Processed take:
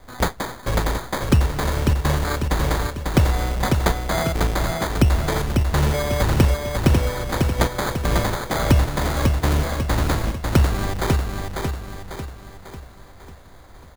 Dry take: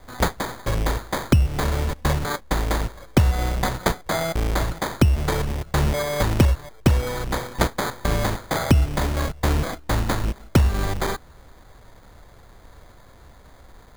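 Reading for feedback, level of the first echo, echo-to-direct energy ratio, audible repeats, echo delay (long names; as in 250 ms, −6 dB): 48%, −4.0 dB, −3.0 dB, 5, 546 ms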